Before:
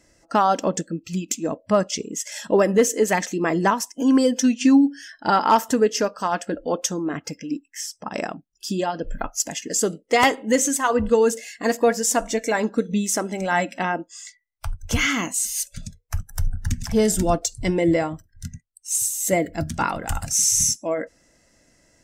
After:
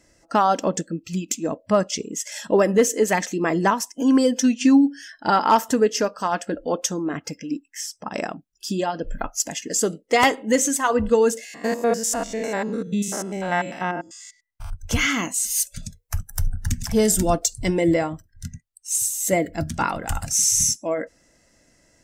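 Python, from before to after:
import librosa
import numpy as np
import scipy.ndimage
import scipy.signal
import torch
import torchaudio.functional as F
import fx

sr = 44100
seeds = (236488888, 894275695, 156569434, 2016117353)

y = fx.spec_steps(x, sr, hold_ms=100, at=(11.44, 14.7), fade=0.02)
y = fx.high_shelf(y, sr, hz=7600.0, db=7.5, at=(15.5, 17.94))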